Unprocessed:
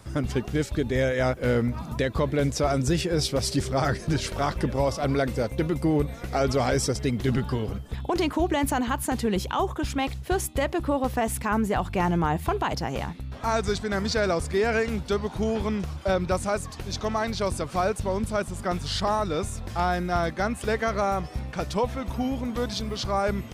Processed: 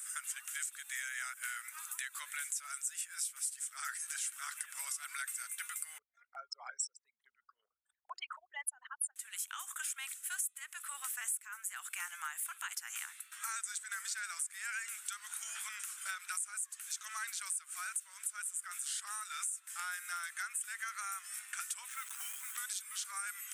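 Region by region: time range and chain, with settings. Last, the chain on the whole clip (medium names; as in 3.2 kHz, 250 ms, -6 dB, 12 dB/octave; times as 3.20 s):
5.98–9.16 s: resonances exaggerated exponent 3 + dynamic bell 720 Hz, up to +5 dB, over -36 dBFS, Q 0.85
21.88–22.58 s: low-pass 7 kHz + modulation noise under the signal 29 dB + transformer saturation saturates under 270 Hz
whole clip: elliptic high-pass 1.4 kHz, stop band 80 dB; resonant high shelf 6.3 kHz +12 dB, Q 3; compression 5:1, threshold -39 dBFS; trim +1 dB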